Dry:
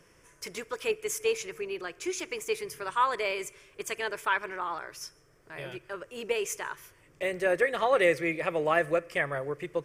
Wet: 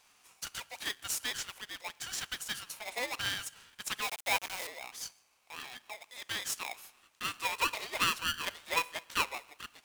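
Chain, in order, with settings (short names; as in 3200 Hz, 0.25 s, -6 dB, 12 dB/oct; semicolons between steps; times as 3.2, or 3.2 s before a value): 4.02–4.67 requantised 6-bit, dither none; steep high-pass 1400 Hz 48 dB/oct; polarity switched at an audio rate 740 Hz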